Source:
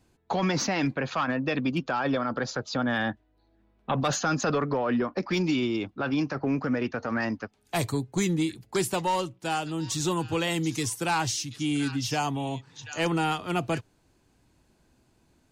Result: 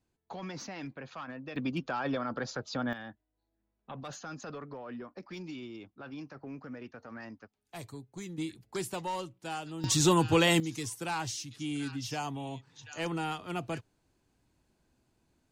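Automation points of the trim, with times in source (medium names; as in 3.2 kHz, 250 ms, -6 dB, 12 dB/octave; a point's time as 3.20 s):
-15 dB
from 1.56 s -6 dB
from 2.93 s -16.5 dB
from 8.38 s -9 dB
from 9.84 s +3.5 dB
from 10.60 s -8 dB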